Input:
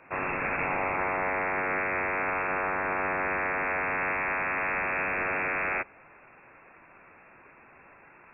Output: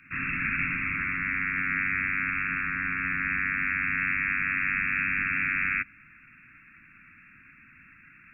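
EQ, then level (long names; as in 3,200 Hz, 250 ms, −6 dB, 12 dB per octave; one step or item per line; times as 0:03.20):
inverse Chebyshev band-stop filter 440–890 Hz, stop band 50 dB
+4.0 dB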